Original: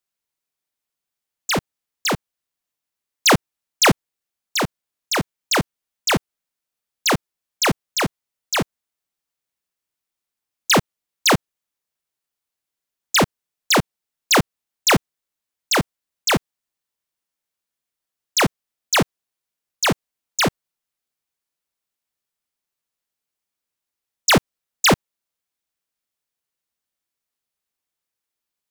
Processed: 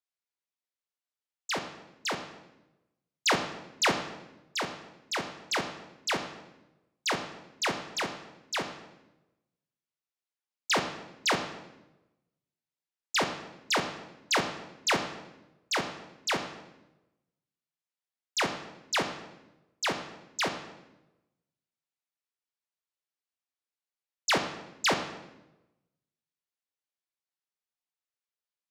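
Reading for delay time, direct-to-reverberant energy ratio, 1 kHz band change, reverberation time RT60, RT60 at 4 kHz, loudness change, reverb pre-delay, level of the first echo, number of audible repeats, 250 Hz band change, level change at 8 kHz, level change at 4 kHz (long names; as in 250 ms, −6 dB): no echo audible, 5.0 dB, −9.5 dB, 1.0 s, 0.80 s, −11.0 dB, 9 ms, no echo audible, no echo audible, −14.0 dB, −12.5 dB, −10.0 dB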